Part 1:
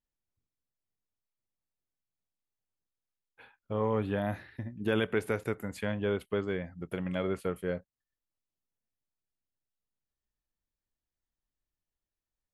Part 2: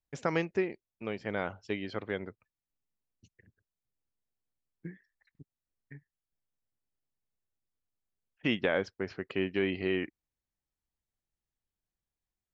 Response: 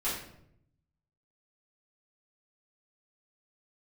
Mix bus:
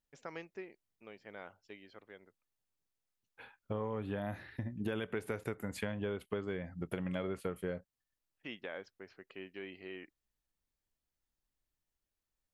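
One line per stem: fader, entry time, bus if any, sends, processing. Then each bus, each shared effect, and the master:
+1.5 dB, 0.00 s, no send, no processing
−13.5 dB, 0.00 s, no send, low-shelf EQ 220 Hz −10.5 dB; automatic ducking −12 dB, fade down 1.85 s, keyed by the first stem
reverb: not used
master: downward compressor 6 to 1, threshold −34 dBFS, peak gain reduction 11.5 dB

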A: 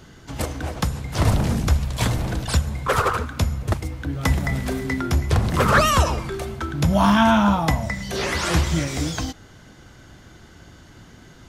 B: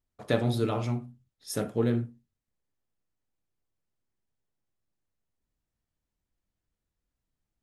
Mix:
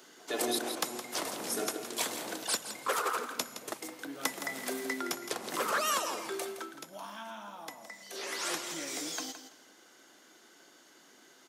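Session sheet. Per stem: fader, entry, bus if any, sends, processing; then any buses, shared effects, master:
0:06.46 −7.5 dB → 0:06.82 −18.5 dB → 0:08.01 −18.5 dB → 0:08.53 −10.5 dB, 0.00 s, no send, echo send −11 dB, downward compressor 6 to 1, threshold −20 dBFS, peak gain reduction 9 dB
+1.5 dB, 0.00 s, no send, echo send −7 dB, comb filter 2.8 ms, depth 99%; tremolo with a ramp in dB swelling 1.7 Hz, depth 27 dB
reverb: not used
echo: repeating echo 166 ms, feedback 24%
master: high-pass filter 290 Hz 24 dB per octave; high-shelf EQ 5,200 Hz +10.5 dB

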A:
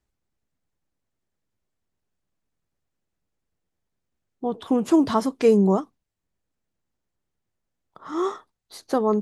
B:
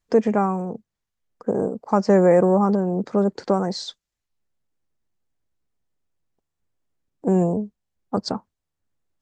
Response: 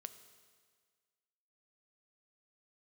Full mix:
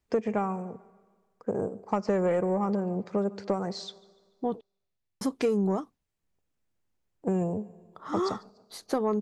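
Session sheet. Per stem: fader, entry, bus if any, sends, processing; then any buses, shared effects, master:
−1.5 dB, 0.00 s, muted 0:04.61–0:05.21, no send, no echo send, no processing
−3.5 dB, 0.00 s, send −6 dB, echo send −22.5 dB, graphic EQ with 15 bands 100 Hz +7 dB, 250 Hz −3 dB, 2,500 Hz +7 dB; expander for the loud parts 1.5 to 1, over −28 dBFS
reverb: on, RT60 1.7 s, pre-delay 4 ms
echo: repeating echo 145 ms, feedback 46%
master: soft clipping −10 dBFS, distortion −21 dB; downward compressor 6 to 1, threshold −23 dBFS, peak gain reduction 8 dB

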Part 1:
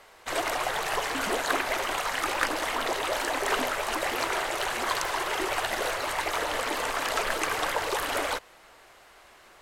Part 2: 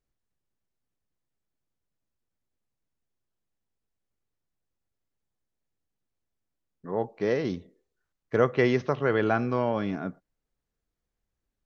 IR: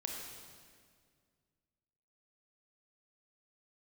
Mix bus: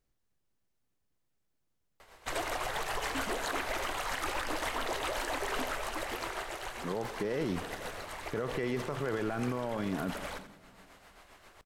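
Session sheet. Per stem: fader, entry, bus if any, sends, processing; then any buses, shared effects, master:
−2.0 dB, 2.00 s, no send, echo send −18 dB, low-shelf EQ 120 Hz +11 dB; amplitude tremolo 7.5 Hz, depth 50%; automatic ducking −9 dB, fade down 1.40 s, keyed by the second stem
+2.5 dB, 0.00 s, send −13.5 dB, no echo send, downward compressor 2.5 to 1, threshold −29 dBFS, peak gain reduction 9.5 dB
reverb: on, RT60 2.0 s, pre-delay 25 ms
echo: repeating echo 86 ms, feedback 33%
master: brickwall limiter −24 dBFS, peak gain reduction 11.5 dB

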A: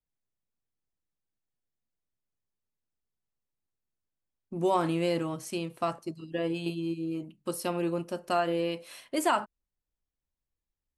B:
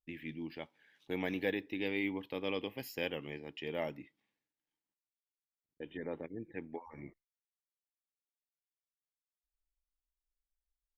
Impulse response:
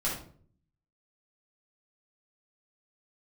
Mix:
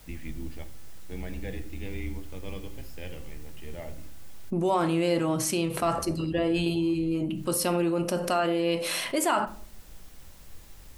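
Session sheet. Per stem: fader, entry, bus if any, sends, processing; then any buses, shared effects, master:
−1.5 dB, 0.00 s, send −16.5 dB, envelope flattener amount 70%
+0.5 dB, 0.00 s, send −20 dB, sub-octave generator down 2 octaves, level −1 dB; low-shelf EQ 140 Hz +11.5 dB; automatic ducking −9 dB, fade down 1.20 s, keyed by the first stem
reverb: on, RT60 0.50 s, pre-delay 5 ms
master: no processing

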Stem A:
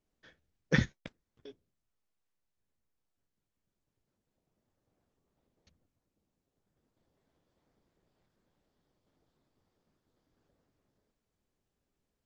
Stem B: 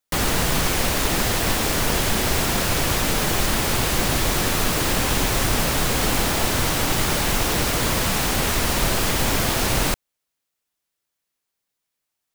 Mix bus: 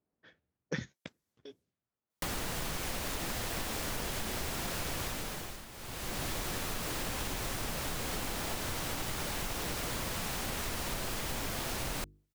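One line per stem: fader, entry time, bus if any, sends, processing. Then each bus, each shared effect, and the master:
0.0 dB, 0.00 s, no send, high-pass filter 94 Hz; low-pass that shuts in the quiet parts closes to 1,200 Hz, open at −49.5 dBFS; high-shelf EQ 5,900 Hz +9 dB
−8.0 dB, 2.10 s, no send, mains-hum notches 50/100/150/200/250/300/350/400/450 Hz; automatic ducking −20 dB, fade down 0.60 s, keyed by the first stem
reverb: not used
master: downward compressor, threshold −33 dBFS, peak gain reduction 12 dB

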